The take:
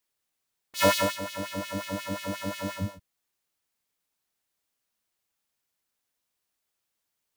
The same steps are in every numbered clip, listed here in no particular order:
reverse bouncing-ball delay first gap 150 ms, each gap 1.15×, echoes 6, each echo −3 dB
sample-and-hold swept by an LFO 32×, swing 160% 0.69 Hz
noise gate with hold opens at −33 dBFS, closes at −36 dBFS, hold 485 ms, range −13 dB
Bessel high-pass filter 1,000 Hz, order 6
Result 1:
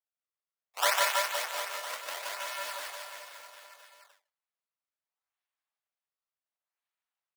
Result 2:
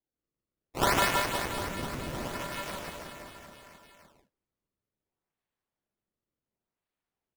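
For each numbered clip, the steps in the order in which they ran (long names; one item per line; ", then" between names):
sample-and-hold swept by an LFO, then reverse bouncing-ball delay, then noise gate with hold, then Bessel high-pass filter
noise gate with hold, then Bessel high-pass filter, then sample-and-hold swept by an LFO, then reverse bouncing-ball delay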